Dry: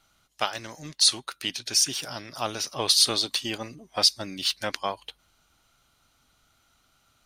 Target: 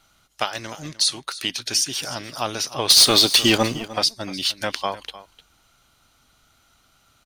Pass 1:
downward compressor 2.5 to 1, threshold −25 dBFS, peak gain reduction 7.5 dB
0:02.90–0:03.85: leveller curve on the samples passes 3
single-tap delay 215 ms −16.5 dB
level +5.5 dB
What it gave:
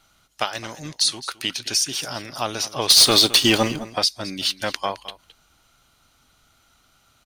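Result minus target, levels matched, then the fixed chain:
echo 88 ms early
downward compressor 2.5 to 1, threshold −25 dBFS, peak gain reduction 7.5 dB
0:02.90–0:03.85: leveller curve on the samples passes 3
single-tap delay 303 ms −16.5 dB
level +5.5 dB

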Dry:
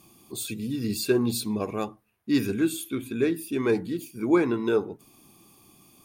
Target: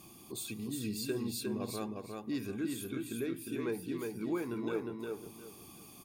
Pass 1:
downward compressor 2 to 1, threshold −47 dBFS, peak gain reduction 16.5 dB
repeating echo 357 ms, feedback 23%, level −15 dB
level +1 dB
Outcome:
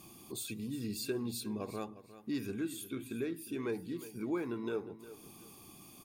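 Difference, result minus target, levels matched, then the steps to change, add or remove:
echo-to-direct −11.5 dB
change: repeating echo 357 ms, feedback 23%, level −3.5 dB

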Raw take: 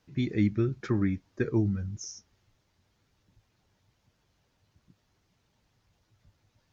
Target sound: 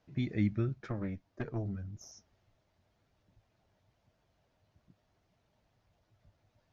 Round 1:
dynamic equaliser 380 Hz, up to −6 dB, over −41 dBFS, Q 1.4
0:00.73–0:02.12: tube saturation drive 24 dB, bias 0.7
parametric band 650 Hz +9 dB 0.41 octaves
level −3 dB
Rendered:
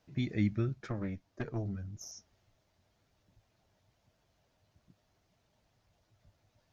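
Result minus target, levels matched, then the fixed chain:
4,000 Hz band +3.5 dB
dynamic equaliser 380 Hz, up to −6 dB, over −41 dBFS, Q 1.4
0:00.73–0:02.12: tube saturation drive 24 dB, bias 0.7
low-pass filter 3,400 Hz 6 dB per octave
parametric band 650 Hz +9 dB 0.41 octaves
level −3 dB

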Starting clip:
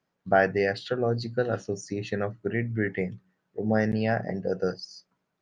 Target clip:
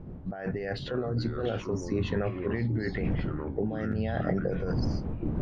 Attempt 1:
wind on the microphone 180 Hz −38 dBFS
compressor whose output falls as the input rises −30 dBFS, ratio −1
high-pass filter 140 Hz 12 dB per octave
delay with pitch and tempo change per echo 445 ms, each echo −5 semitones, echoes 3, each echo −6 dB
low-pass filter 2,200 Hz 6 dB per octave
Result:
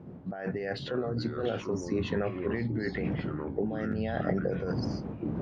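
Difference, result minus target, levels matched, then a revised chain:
125 Hz band −2.5 dB
wind on the microphone 180 Hz −38 dBFS
compressor whose output falls as the input rises −30 dBFS, ratio −1
delay with pitch and tempo change per echo 445 ms, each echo −5 semitones, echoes 3, each echo −6 dB
low-pass filter 2,200 Hz 6 dB per octave

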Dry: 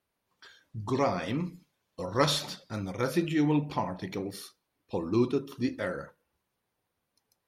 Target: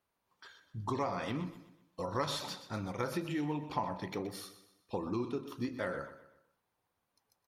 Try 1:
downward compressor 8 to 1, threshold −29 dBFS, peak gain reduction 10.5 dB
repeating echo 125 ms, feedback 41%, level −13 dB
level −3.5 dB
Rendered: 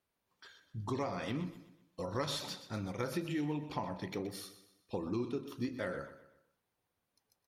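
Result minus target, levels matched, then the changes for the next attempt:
1,000 Hz band −3.5 dB
add after downward compressor: parametric band 1,000 Hz +5.5 dB 1.1 octaves

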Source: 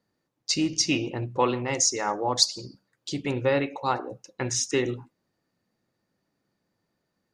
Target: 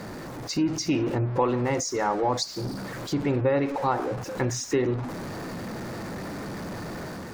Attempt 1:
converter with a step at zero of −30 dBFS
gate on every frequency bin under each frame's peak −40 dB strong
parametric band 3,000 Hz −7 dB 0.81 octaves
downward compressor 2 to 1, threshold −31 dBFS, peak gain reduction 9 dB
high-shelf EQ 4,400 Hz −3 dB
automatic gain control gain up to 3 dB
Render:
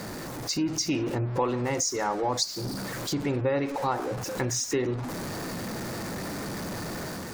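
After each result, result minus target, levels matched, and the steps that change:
8,000 Hz band +5.5 dB; downward compressor: peak gain reduction +3 dB
change: high-shelf EQ 4,400 Hz −13 dB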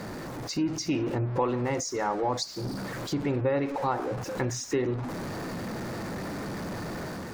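downward compressor: peak gain reduction +3 dB
change: downward compressor 2 to 1, threshold −24.5 dBFS, peak gain reduction 5.5 dB

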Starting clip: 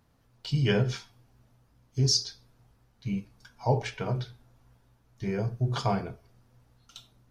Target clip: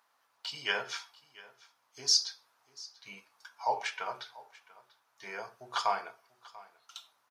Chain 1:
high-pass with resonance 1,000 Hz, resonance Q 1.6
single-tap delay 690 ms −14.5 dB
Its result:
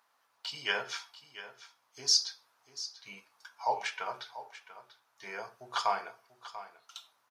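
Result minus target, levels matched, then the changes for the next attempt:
echo-to-direct +6.5 dB
change: single-tap delay 690 ms −21 dB

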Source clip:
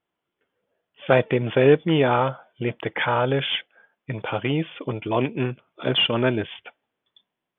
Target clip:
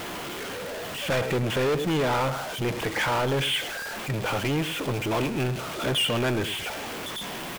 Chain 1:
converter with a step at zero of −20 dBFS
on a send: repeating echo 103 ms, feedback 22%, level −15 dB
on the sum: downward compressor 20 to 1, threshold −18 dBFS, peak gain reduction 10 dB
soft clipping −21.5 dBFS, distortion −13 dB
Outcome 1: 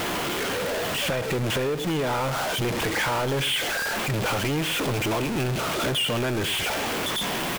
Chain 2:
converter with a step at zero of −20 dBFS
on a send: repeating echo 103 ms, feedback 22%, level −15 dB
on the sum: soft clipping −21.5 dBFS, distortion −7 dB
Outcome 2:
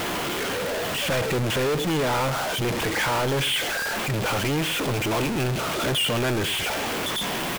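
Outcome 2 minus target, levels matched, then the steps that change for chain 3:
converter with a step at zero: distortion +6 dB
change: converter with a step at zero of −28 dBFS

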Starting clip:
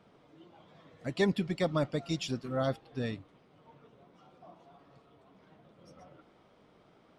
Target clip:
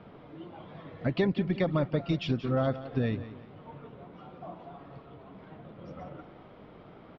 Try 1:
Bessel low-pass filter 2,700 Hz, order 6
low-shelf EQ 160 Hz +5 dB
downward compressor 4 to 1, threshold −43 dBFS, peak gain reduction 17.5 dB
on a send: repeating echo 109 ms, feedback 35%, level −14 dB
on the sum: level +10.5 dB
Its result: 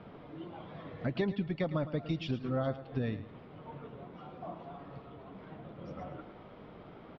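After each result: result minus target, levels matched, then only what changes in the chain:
echo 69 ms early; downward compressor: peak gain reduction +5 dB
change: repeating echo 178 ms, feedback 35%, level −14 dB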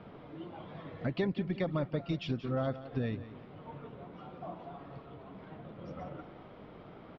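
downward compressor: peak gain reduction +5 dB
change: downward compressor 4 to 1, threshold −36 dBFS, peak gain reduction 12 dB

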